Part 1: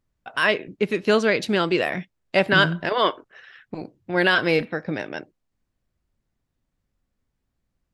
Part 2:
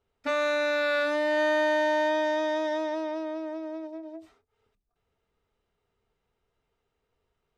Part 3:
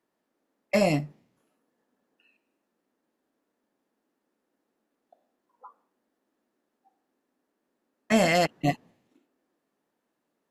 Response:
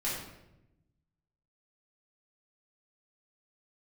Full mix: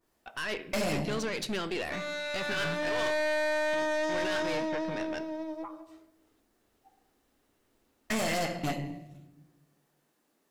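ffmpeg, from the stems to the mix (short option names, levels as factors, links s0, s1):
-filter_complex "[0:a]alimiter=limit=0.188:level=0:latency=1:release=18,volume=0.422,asplit=2[s0][s1];[s1]volume=0.112[s2];[1:a]adelay=1650,volume=1.06,asplit=2[s3][s4];[s4]volume=0.126[s5];[2:a]acompressor=threshold=0.0447:ratio=3,adynamicequalizer=threshold=0.00562:dfrequency=1600:dqfactor=0.7:tfrequency=1600:tqfactor=0.7:attack=5:release=100:ratio=0.375:range=3.5:mode=cutabove:tftype=highshelf,volume=1.41,asplit=3[s6][s7][s8];[s7]volume=0.316[s9];[s8]apad=whole_len=406863[s10];[s3][s10]sidechaincompress=threshold=0.00398:ratio=5:attack=8.6:release=1340[s11];[3:a]atrim=start_sample=2205[s12];[s2][s5][s9]amix=inputs=3:normalize=0[s13];[s13][s12]afir=irnorm=-1:irlink=0[s14];[s0][s11][s6][s14]amix=inputs=4:normalize=0,highshelf=f=3100:g=8.5,aeval=exprs='(tanh(22.4*val(0)+0.45)-tanh(0.45))/22.4':c=same"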